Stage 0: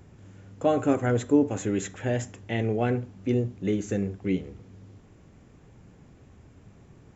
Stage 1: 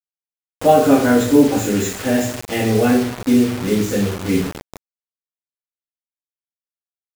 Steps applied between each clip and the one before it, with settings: two-slope reverb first 0.46 s, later 2.1 s, from -21 dB, DRR -8 dB; bit crusher 5-bit; trim +2 dB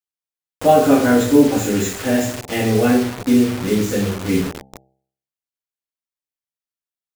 de-hum 66.13 Hz, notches 13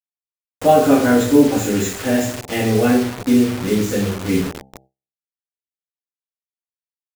gate with hold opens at -29 dBFS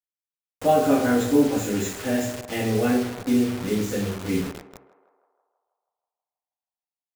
band-passed feedback delay 160 ms, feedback 68%, band-pass 820 Hz, level -13.5 dB; trim -6.5 dB

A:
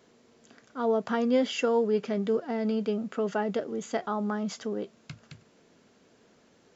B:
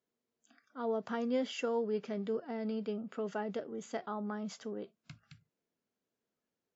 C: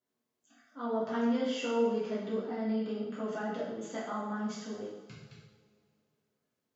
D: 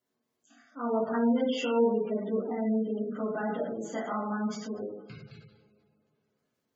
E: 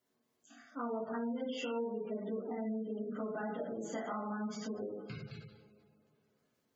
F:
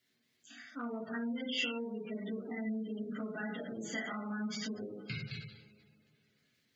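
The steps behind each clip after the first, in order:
spectral noise reduction 20 dB; trim -8.5 dB
two-slope reverb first 0.81 s, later 2.7 s, from -19 dB, DRR -8.5 dB; trim -5.5 dB
spectral gate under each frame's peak -25 dB strong; trim +4 dB
compression 4:1, threshold -39 dBFS, peak gain reduction 16 dB; trim +1.5 dB
graphic EQ 125/500/1000/2000/4000 Hz +4/-5/-10/+11/+9 dB; trim +1 dB

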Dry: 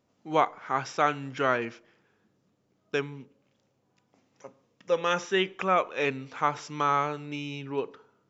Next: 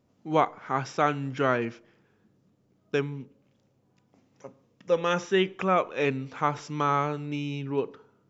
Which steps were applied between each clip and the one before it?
bass shelf 380 Hz +9 dB; trim -1.5 dB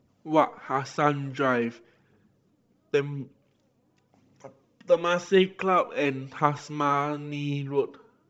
phaser 0.93 Hz, delay 4.5 ms, feedback 44%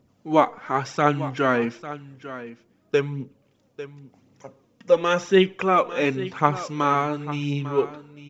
delay 848 ms -14.5 dB; trim +3.5 dB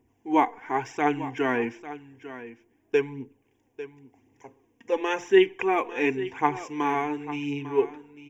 static phaser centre 860 Hz, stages 8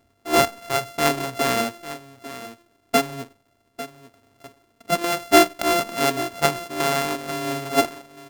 sorted samples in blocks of 64 samples; trim +3.5 dB

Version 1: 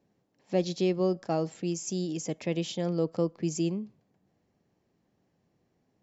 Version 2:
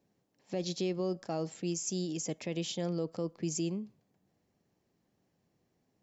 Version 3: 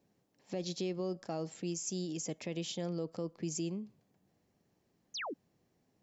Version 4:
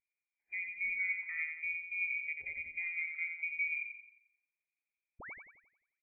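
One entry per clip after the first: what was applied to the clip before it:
treble shelf 4 kHz +6 dB; peak limiter -20.5 dBFS, peak gain reduction 6.5 dB; trim -3.5 dB
in parallel at +1 dB: compression, threshold -43 dBFS, peak gain reduction 13 dB; on the sum: painted sound fall, 5.14–5.34 s, 230–6900 Hz -34 dBFS; trim -5.5 dB
feedback delay 88 ms, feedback 59%, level -4 dB; frequency inversion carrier 2.6 kHz; spectral contrast expander 1.5:1; trim -2.5 dB

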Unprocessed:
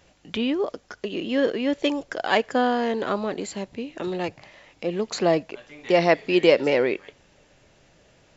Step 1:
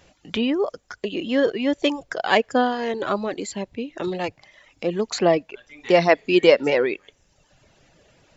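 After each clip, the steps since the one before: reverb removal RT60 0.98 s; trim +3 dB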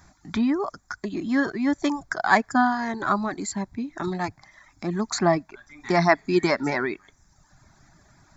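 static phaser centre 1.2 kHz, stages 4; trim +4.5 dB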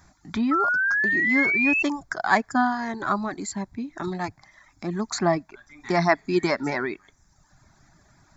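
painted sound rise, 0.51–1.83 s, 1.3–2.7 kHz -21 dBFS; trim -1.5 dB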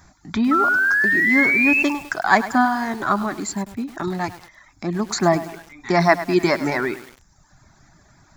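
bit-crushed delay 103 ms, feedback 55%, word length 6-bit, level -13.5 dB; trim +4.5 dB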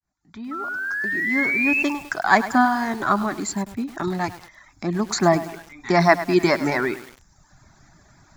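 fade-in on the opening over 2.52 s

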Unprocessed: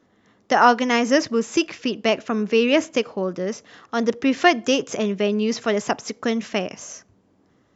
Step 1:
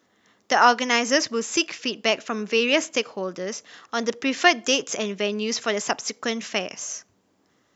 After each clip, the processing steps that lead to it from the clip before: tilt EQ +2.5 dB/octave; trim -1.5 dB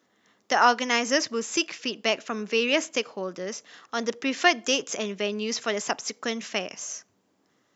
high-pass 110 Hz; trim -3 dB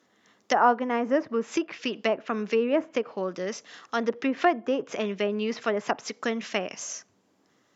low-pass that closes with the level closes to 1 kHz, closed at -22 dBFS; trim +2 dB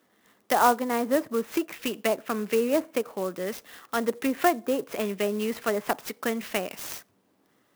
sampling jitter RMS 0.039 ms

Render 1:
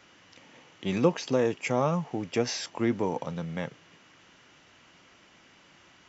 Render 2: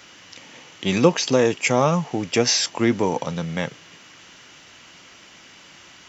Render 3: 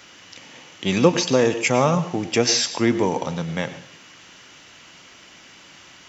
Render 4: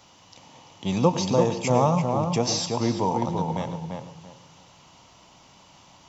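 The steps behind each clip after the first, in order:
treble shelf 2.8 kHz +9.5 dB; trim +7 dB
reverberation RT60 0.45 s, pre-delay 87 ms, DRR 12 dB
FFT filter 140 Hz 0 dB, 370 Hz -9 dB, 940 Hz +2 dB, 1.6 kHz -17 dB, 4 kHz -7 dB; on a send: filtered feedback delay 339 ms, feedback 25%, low-pass 2.2 kHz, level -4 dB

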